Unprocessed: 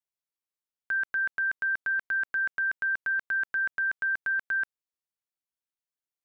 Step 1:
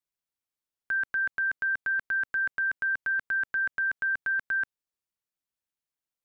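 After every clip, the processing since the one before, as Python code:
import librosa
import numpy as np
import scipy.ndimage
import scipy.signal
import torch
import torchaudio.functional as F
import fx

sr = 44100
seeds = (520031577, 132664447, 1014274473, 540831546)

y = fx.low_shelf(x, sr, hz=270.0, db=4.5)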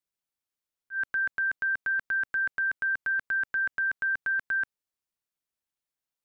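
y = fx.auto_swell(x, sr, attack_ms=115.0)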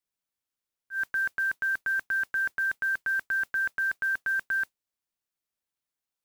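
y = fx.mod_noise(x, sr, seeds[0], snr_db=26)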